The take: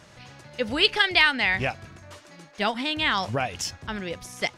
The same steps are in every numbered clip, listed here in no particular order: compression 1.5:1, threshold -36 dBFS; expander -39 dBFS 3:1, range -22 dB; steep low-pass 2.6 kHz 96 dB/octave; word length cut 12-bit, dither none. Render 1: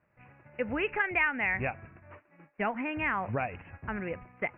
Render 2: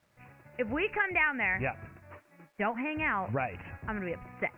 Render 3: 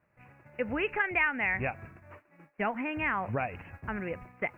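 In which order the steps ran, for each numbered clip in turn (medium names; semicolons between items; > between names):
word length cut > steep low-pass > compression > expander; expander > steep low-pass > compression > word length cut; steep low-pass > word length cut > expander > compression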